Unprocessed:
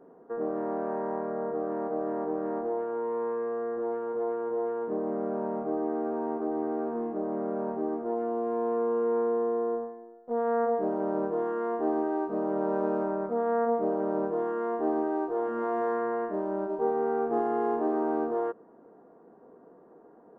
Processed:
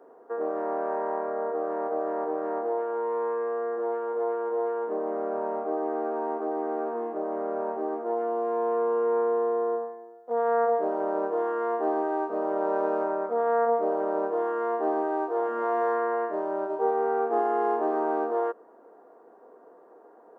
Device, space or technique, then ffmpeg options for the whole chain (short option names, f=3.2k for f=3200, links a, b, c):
filter by subtraction: -filter_complex "[0:a]asplit=2[a][b];[b]lowpass=270,volume=-1[c];[a][c]amix=inputs=2:normalize=0,highpass=520,volume=4.5dB"